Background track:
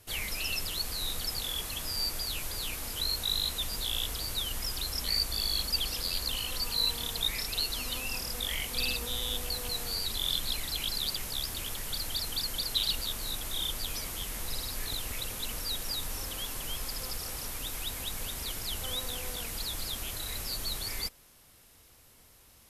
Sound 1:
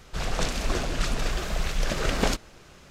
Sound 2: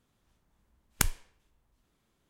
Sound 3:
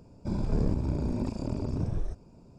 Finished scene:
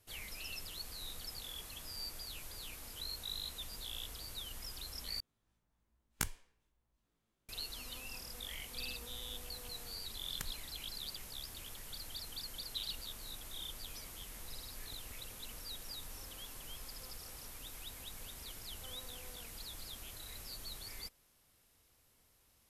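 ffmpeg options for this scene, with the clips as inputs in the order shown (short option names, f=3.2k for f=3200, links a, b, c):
-filter_complex "[2:a]asplit=2[a][b];[0:a]volume=-12dB[c];[a]asplit=2[d][e];[e]adelay=18,volume=-3dB[f];[d][f]amix=inputs=2:normalize=0[g];[b]acompressor=threshold=-37dB:ratio=6:attack=3.2:release=140:knee=1:detection=peak[h];[c]asplit=2[i][j];[i]atrim=end=5.204[k];[g]atrim=end=2.29,asetpts=PTS-STARTPTS,volume=-11dB[l];[j]atrim=start=7.486[m];[h]atrim=end=2.29,asetpts=PTS-STARTPTS,volume=-2.5dB,afade=t=in:d=0.004:c=hsin,afade=t=out:st=2.286:d=0.004:c=hsin,adelay=9400[n];[k][l]acrossfade=d=0.004:c1=hsin:c2=hsin[o];[o][m]acrossfade=d=0.004:c1=hsin:c2=hsin[p];[p][n]amix=inputs=2:normalize=0"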